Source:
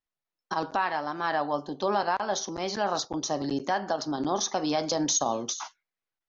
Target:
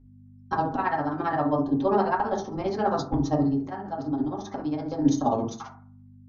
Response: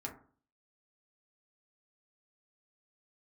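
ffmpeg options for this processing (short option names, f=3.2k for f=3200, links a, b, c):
-filter_complex "[0:a]aemphasis=mode=reproduction:type=riaa,asettb=1/sr,asplit=3[a][b][c];[a]atrim=end=3.424[d];[b]atrim=start=3.42:end=5.02,asetpts=PTS-STARTPTS,afade=t=in:d=0.004:c=qsin,afade=t=out:st=1.596:d=0.004:c=qsin,acompressor=threshold=-30dB:ratio=6[e];[c]atrim=start=5.016[f];[d][e]acrossfade=d=0.004:c1=hsin:c2=qsin[g];[g][f]acrossfade=d=0.004:c1=qsin:c2=hsin,tremolo=f=15:d=0.91,aeval=exprs='val(0)+0.00178*(sin(2*PI*50*n/s)+sin(2*PI*2*50*n/s)/2+sin(2*PI*3*50*n/s)/3+sin(2*PI*4*50*n/s)/4+sin(2*PI*5*50*n/s)/5)':c=same[h];[1:a]atrim=start_sample=2205[i];[h][i]afir=irnorm=-1:irlink=0,volume=5dB"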